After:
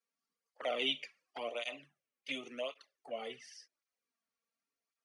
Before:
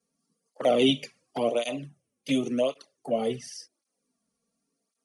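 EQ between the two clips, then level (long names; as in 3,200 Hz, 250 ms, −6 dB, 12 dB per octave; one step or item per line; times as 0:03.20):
resonant band-pass 2,000 Hz, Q 1.2
−2.5 dB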